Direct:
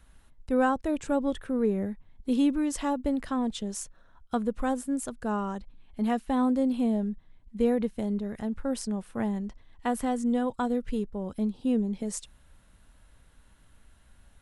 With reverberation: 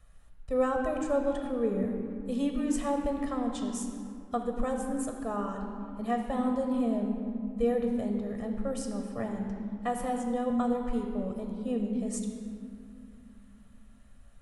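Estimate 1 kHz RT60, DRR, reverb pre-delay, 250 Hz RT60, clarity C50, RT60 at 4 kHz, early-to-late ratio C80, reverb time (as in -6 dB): 2.5 s, 3.0 dB, 3 ms, 3.8 s, 4.5 dB, 1.3 s, 5.5 dB, 2.7 s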